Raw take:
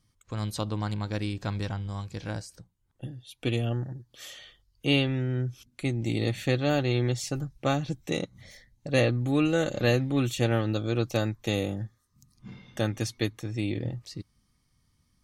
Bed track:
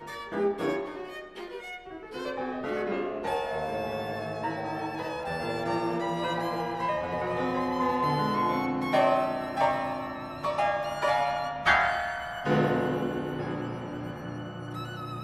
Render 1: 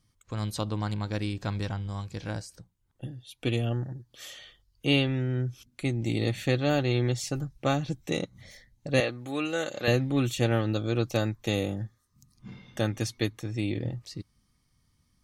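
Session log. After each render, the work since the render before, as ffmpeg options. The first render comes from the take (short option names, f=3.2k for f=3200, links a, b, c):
-filter_complex "[0:a]asettb=1/sr,asplit=3[a][b][c];[a]atrim=end=9.004[d];[b]atrim=start=9:end=9.88,asetpts=PTS-STARTPTS,afade=t=in:d=0.004:c=qsin,afade=t=out:st=0.876:d=0.004:c=qsin,highpass=f=650:p=1[e];[c]atrim=start=9.876[f];[d][e]acrossfade=d=0.004:c1=hsin:c2=qsin[g];[g][f]acrossfade=d=0.004:c1=qsin:c2=hsin"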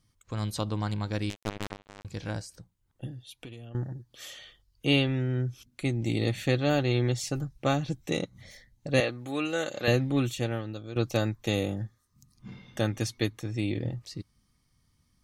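-filter_complex "[0:a]asettb=1/sr,asplit=3[a][b][c];[a]atrim=end=1.304[d];[b]atrim=start=1.3:end=2.05,asetpts=PTS-STARTPTS,afade=t=in:d=0.004:c=qsin,afade=t=out:st=0.746:d=0.004:c=qsin,acrusher=bits=3:mix=0:aa=0.5[e];[c]atrim=start=2.046[f];[d][e]acrossfade=d=0.004:c1=hsin:c2=qsin[g];[g][f]acrossfade=d=0.004:c1=qsin:c2=hsin,asettb=1/sr,asplit=3[h][i][j];[h]atrim=end=3.254[k];[i]atrim=start=3.25:end=3.75,asetpts=PTS-STARTPTS,afade=t=in:d=0.004:c=qsin,afade=t=out:st=0.496:d=0.004:c=qsin,acompressor=threshold=-40dB:ratio=8:attack=3.2:release=140:knee=1:detection=peak[l];[j]atrim=start=3.746[m];[k][l]acrossfade=d=0.004:c1=hsin:c2=qsin[n];[n][m]acrossfade=d=0.004:c1=qsin:c2=hsin,asplit=2[o][p];[o]atrim=end=10.96,asetpts=PTS-STARTPTS,afade=t=out:st=10.16:d=0.8:c=qua:silence=0.266073[q];[p]atrim=start=10.96,asetpts=PTS-STARTPTS,afade=t=in:d=0.004:c=hsin:silence=0.266073[r];[q][r]concat=n=2:v=0:a=1"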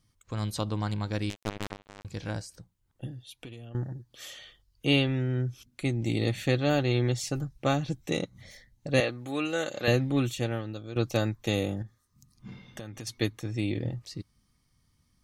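-filter_complex "[0:a]asettb=1/sr,asplit=3[a][b][c];[a]atrim=end=11.824[d];[b]atrim=start=11.82:end=13.07,asetpts=PTS-STARTPTS,afade=t=in:d=0.004:c=qsin,afade=t=out:st=1.246:d=0.004:c=qsin,acompressor=threshold=-37dB:ratio=6:attack=3.2:release=140:knee=1:detection=peak[e];[c]atrim=start=13.066[f];[d][e]acrossfade=d=0.004:c1=hsin:c2=qsin[g];[g][f]acrossfade=d=0.004:c1=qsin:c2=hsin"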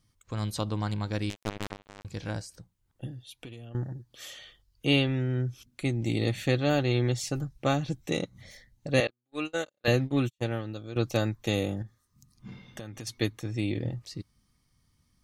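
-filter_complex "[0:a]asettb=1/sr,asplit=3[a][b][c];[a]atrim=end=9.074[d];[b]atrim=start=9.07:end=10.44,asetpts=PTS-STARTPTS,afade=t=in:d=0.004:c=qsin,afade=t=out:st=1.366:d=0.004:c=qsin,agate=range=-46dB:threshold=-30dB:ratio=16:release=100:detection=peak[e];[c]atrim=start=10.436[f];[d][e]acrossfade=d=0.004:c1=hsin:c2=qsin[g];[g][f]acrossfade=d=0.004:c1=qsin:c2=hsin"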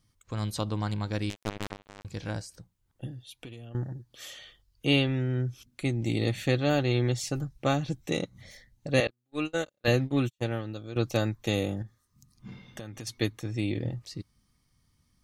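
-filter_complex "[0:a]asettb=1/sr,asplit=3[a][b][c];[a]atrim=end=9.064[d];[b]atrim=start=9.06:end=9.88,asetpts=PTS-STARTPTS,afade=t=in:d=0.004:c=qsin,afade=t=out:st=0.816:d=0.004:c=qsin,lowshelf=f=180:g=10[e];[c]atrim=start=9.876[f];[d][e]acrossfade=d=0.004:c1=hsin:c2=qsin[g];[g][f]acrossfade=d=0.004:c1=qsin:c2=hsin"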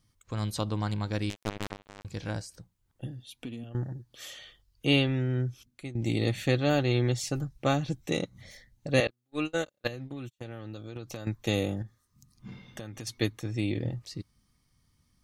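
-filter_complex "[0:a]asettb=1/sr,asplit=3[a][b][c];[a]atrim=end=3.194[d];[b]atrim=start=3.19:end=3.64,asetpts=PTS-STARTPTS,afade=t=in:d=0.004:c=qsin,afade=t=out:st=0.446:d=0.004:c=qsin,equalizer=f=240:w=4:g=13[e];[c]atrim=start=3.636[f];[d][e]acrossfade=d=0.004:c1=hsin:c2=qsin[g];[g][f]acrossfade=d=0.004:c1=qsin:c2=hsin,asettb=1/sr,asplit=3[h][i][j];[h]atrim=end=9.874[k];[i]atrim=start=9.87:end=11.27,asetpts=PTS-STARTPTS,afade=t=in:d=0.004:c=qsin,afade=t=out:st=1.396:d=0.004:c=qsin,acompressor=threshold=-35dB:ratio=8:attack=3.2:release=140:knee=1:detection=peak[l];[j]atrim=start=11.266[m];[k][l]acrossfade=d=0.004:c1=hsin:c2=qsin[n];[n][m]acrossfade=d=0.004:c1=qsin:c2=hsin,asplit=2[o][p];[o]atrim=end=5.95,asetpts=PTS-STARTPTS,afade=t=out:st=5.43:d=0.52:silence=0.16788[q];[p]atrim=start=5.95,asetpts=PTS-STARTPTS,afade=t=in:d=0.004:c=hsin:silence=0.16788[r];[q][r]concat=n=2:v=0:a=1"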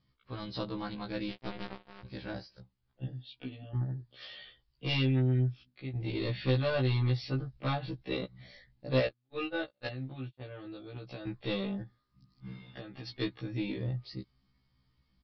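-af "aresample=11025,asoftclip=type=tanh:threshold=-20dB,aresample=44100,afftfilt=real='re*1.73*eq(mod(b,3),0)':imag='im*1.73*eq(mod(b,3),0)':win_size=2048:overlap=0.75"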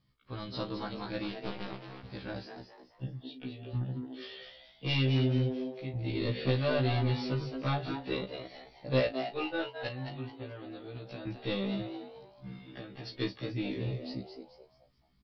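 -filter_complex "[0:a]asplit=2[a][b];[b]adelay=36,volume=-12dB[c];[a][c]amix=inputs=2:normalize=0,asplit=5[d][e][f][g][h];[e]adelay=216,afreqshift=130,volume=-8dB[i];[f]adelay=432,afreqshift=260,volume=-17.1dB[j];[g]adelay=648,afreqshift=390,volume=-26.2dB[k];[h]adelay=864,afreqshift=520,volume=-35.4dB[l];[d][i][j][k][l]amix=inputs=5:normalize=0"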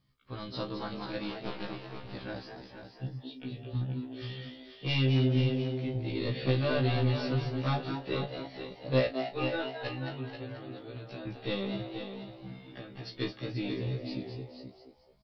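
-filter_complex "[0:a]asplit=2[a][b];[b]adelay=23,volume=-12dB[c];[a][c]amix=inputs=2:normalize=0,asplit=2[d][e];[e]aecho=0:1:485:0.376[f];[d][f]amix=inputs=2:normalize=0"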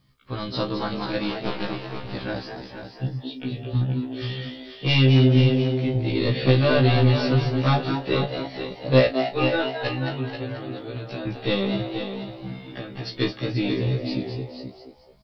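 -af "volume=10dB"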